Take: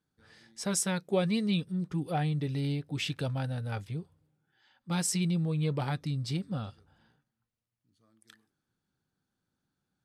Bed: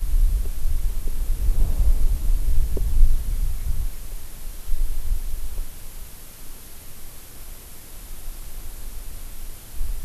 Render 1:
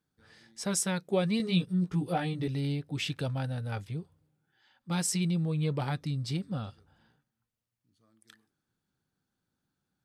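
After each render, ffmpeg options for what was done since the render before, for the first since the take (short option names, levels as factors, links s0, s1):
-filter_complex "[0:a]asettb=1/sr,asplit=3[s0][s1][s2];[s0]atrim=end=1.384[s3];[s1]atrim=start=1.38:end=2.48,asetpts=PTS-STARTPTS,afade=t=in:d=0.004:c=qsin,afade=t=out:st=1.096:d=0.004:c=qsin,asplit=2[s4][s5];[s5]adelay=17,volume=0.794[s6];[s4][s6]amix=inputs=2:normalize=0,atrim=end_sample=48510[s7];[s2]atrim=start=2.476[s8];[s3][s7]acrossfade=d=0.004:c1=hsin:c2=qsin[s9];[s9][s8]acrossfade=d=0.004:c1=qsin:c2=hsin"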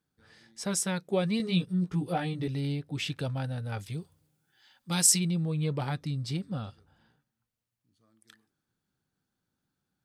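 -filter_complex "[0:a]asplit=3[s0][s1][s2];[s0]afade=t=out:st=3.78:d=0.02[s3];[s1]highshelf=f=3100:g=12,afade=t=in:st=3.78:d=0.02,afade=t=out:st=5.18:d=0.02[s4];[s2]afade=t=in:st=5.18:d=0.02[s5];[s3][s4][s5]amix=inputs=3:normalize=0"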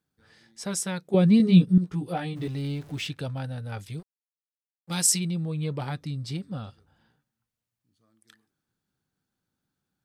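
-filter_complex "[0:a]asettb=1/sr,asplit=3[s0][s1][s2];[s0]atrim=end=1.144[s3];[s1]atrim=start=1.14:end=1.78,asetpts=PTS-STARTPTS,afade=t=in:d=0.004:c=qsin,afade=t=out:st=0.636:d=0.004:c=qsin,equalizer=f=210:w=0.63:g=12[s4];[s2]atrim=start=1.776[s5];[s3][s4]acrossfade=d=0.004:c1=hsin:c2=qsin[s6];[s6][s5]acrossfade=d=0.004:c1=qsin:c2=hsin,asettb=1/sr,asplit=3[s7][s8][s9];[s7]atrim=end=2.364[s10];[s8]atrim=start=2.36:end=3.07,asetpts=PTS-STARTPTS,afade=t=in:d=0.004:c=qsin,afade=t=out:st=0.706:d=0.004:c=qsin,aeval=exprs='val(0)+0.5*0.00631*sgn(val(0))':c=same[s11];[s9]atrim=start=3.066[s12];[s10][s11]acrossfade=d=0.004:c1=hsin:c2=qsin[s13];[s13][s12]acrossfade=d=0.004:c1=qsin:c2=hsin,asettb=1/sr,asplit=3[s14][s15][s16];[s14]atrim=end=3.994[s17];[s15]atrim=start=3.99:end=4.97,asetpts=PTS-STARTPTS,afade=t=in:d=0.004:c=qsin,afade=t=out:st=0.976:d=0.004:c=qsin,aeval=exprs='sgn(val(0))*max(abs(val(0))-0.00376,0)':c=same[s18];[s16]atrim=start=4.966[s19];[s17][s18]acrossfade=d=0.004:c1=hsin:c2=qsin[s20];[s20][s19]acrossfade=d=0.004:c1=qsin:c2=hsin"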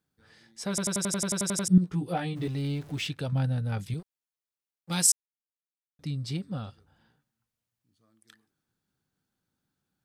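-filter_complex "[0:a]asettb=1/sr,asplit=3[s0][s1][s2];[s0]atrim=end=3.324[s3];[s1]atrim=start=3.32:end=3.94,asetpts=PTS-STARTPTS,afade=t=in:d=0.004:c=qsin,afade=t=out:st=0.616:d=0.004:c=qsin,equalizer=f=170:w=1.5:g=12[s4];[s2]atrim=start=3.936[s5];[s3][s4]acrossfade=d=0.004:c1=hsin:c2=qsin[s6];[s6][s5]acrossfade=d=0.004:c1=qsin:c2=hsin,asplit=14[s7][s8][s9][s10][s11][s12][s13][s14][s15][s16][s17][s18][s19][s20];[s7]atrim=end=0.782[s21];[s8]atrim=start=0.688:end=0.782[s22];[s9]atrim=start=0.688:end=0.782[s23];[s10]atrim=start=0.688:end=0.782[s24];[s11]atrim=start=0.688:end=0.782[s25];[s12]atrim=start=0.688:end=0.782[s26];[s13]atrim=start=0.688:end=0.782[s27];[s14]atrim=start=0.688:end=0.782[s28];[s15]atrim=start=0.688:end=0.782[s29];[s16]atrim=start=0.688:end=0.782[s30];[s17]atrim=start=0.688:end=0.782[s31];[s18]atrim=start=1.678:end=5.12,asetpts=PTS-STARTPTS,afade=t=out:st=3.438:d=0.004:c=hsin[s32];[s19]atrim=start=5.12:end=5.99,asetpts=PTS-STARTPTS,volume=0[s33];[s20]atrim=start=5.99,asetpts=PTS-STARTPTS,afade=t=in:d=0.004:c=hsin[s34];[s21][s22]acrossfade=d=0.004:c1=hsin:c2=hsin[s35];[s35][s23]acrossfade=d=0.004:c1=hsin:c2=hsin[s36];[s36][s24]acrossfade=d=0.004:c1=hsin:c2=hsin[s37];[s37][s25]acrossfade=d=0.004:c1=hsin:c2=hsin[s38];[s38][s26]acrossfade=d=0.004:c1=hsin:c2=hsin[s39];[s39][s27]acrossfade=d=0.004:c1=hsin:c2=hsin[s40];[s40][s28]acrossfade=d=0.004:c1=hsin:c2=hsin[s41];[s41][s29]acrossfade=d=0.004:c1=hsin:c2=hsin[s42];[s42][s30]acrossfade=d=0.004:c1=hsin:c2=hsin[s43];[s43][s31]acrossfade=d=0.004:c1=hsin:c2=hsin[s44];[s32][s33][s34]concat=n=3:v=0:a=1[s45];[s44][s45]acrossfade=d=0.004:c1=hsin:c2=hsin"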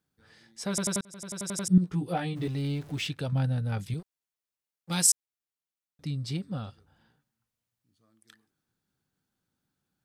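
-filter_complex "[0:a]asplit=2[s0][s1];[s0]atrim=end=1.01,asetpts=PTS-STARTPTS,afade=t=out:st=1.006:d=0.004:c=hsin[s2];[s1]atrim=start=1.01,asetpts=PTS-STARTPTS,afade=t=in:d=0.84[s3];[s2][s3]concat=n=2:v=0:a=1"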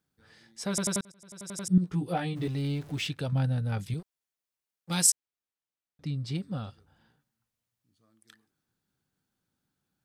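-filter_complex "[0:a]asettb=1/sr,asplit=3[s0][s1][s2];[s0]atrim=end=5.104[s3];[s1]atrim=start=5.1:end=6.35,asetpts=PTS-STARTPTS,afade=t=in:d=0.004:c=qsin,afade=t=out:st=1.246:d=0.004:c=qsin,highshelf=f=6200:g=-9.5[s4];[s2]atrim=start=6.346[s5];[s3][s4]acrossfade=d=0.004:c1=hsin:c2=qsin[s6];[s6][s5]acrossfade=d=0.004:c1=qsin:c2=hsin,asplit=2[s7][s8];[s7]atrim=end=1.12,asetpts=PTS-STARTPTS,afade=t=out:st=1.116:d=0.004:c=hsin:silence=0.105925[s9];[s8]atrim=start=1.12,asetpts=PTS-STARTPTS,afade=t=in:d=0.83:silence=0.105925[s10];[s9][s10]concat=n=2:v=0:a=1"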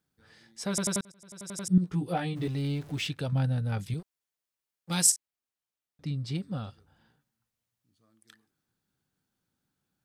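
-filter_complex "[0:a]asettb=1/sr,asplit=3[s0][s1][s2];[s0]atrim=end=5.024[s3];[s1]atrim=start=5.02:end=6.12,asetpts=PTS-STARTPTS,afade=t=in:d=0.004:c=qsin,afade=t=out:st=1.096:d=0.004:c=qsin,asplit=2[s4][s5];[s5]adelay=42,volume=0.224[s6];[s4][s6]amix=inputs=2:normalize=0,atrim=end_sample=48510[s7];[s2]atrim=start=6.116[s8];[s3][s7]acrossfade=d=0.004:c1=hsin:c2=qsin[s9];[s9][s8]acrossfade=d=0.004:c1=qsin:c2=hsin"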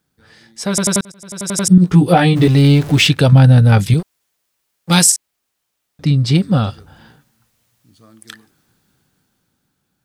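-af "dynaudnorm=f=200:g=13:m=3.55,alimiter=level_in=3.55:limit=0.891:release=50:level=0:latency=1"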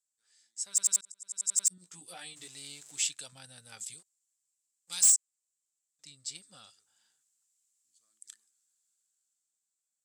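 -af "bandpass=f=7600:t=q:w=6.7:csg=0,asoftclip=type=hard:threshold=0.126"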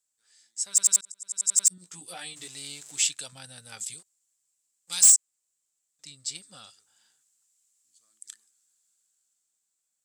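-af "volume=2"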